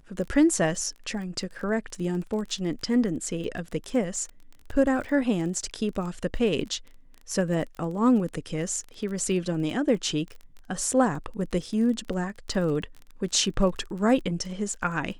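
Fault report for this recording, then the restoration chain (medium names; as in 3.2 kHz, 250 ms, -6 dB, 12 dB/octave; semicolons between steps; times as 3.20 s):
crackle 27 per s -34 dBFS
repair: de-click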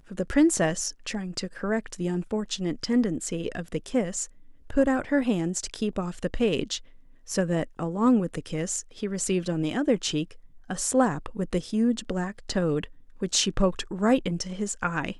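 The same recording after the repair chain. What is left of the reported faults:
nothing left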